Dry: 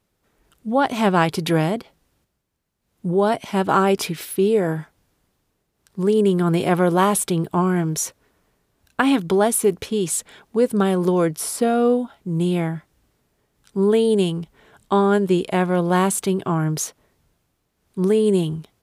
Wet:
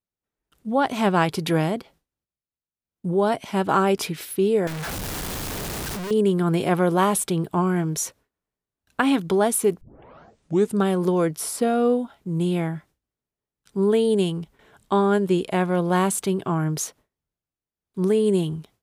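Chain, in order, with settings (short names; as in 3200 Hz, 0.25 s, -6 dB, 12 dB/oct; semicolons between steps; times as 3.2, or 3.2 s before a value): 4.67–6.11 infinite clipping; gate with hold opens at -44 dBFS; 9.81 tape start 0.97 s; gain -2.5 dB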